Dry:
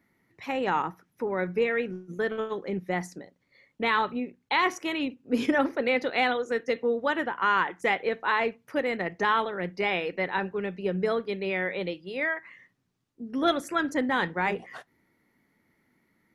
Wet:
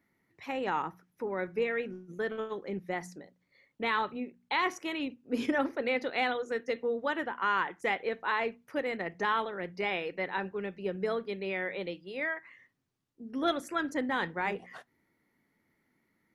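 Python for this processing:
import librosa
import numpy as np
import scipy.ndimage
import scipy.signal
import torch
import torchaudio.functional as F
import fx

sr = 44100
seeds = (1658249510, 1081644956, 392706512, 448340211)

y = fx.hum_notches(x, sr, base_hz=60, count=4)
y = y * librosa.db_to_amplitude(-5.0)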